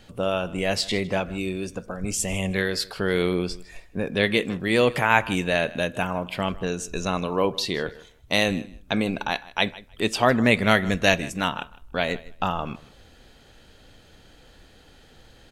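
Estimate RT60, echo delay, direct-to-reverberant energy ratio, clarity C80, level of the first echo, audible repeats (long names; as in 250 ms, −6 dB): no reverb audible, 156 ms, no reverb audible, no reverb audible, −20.0 dB, 1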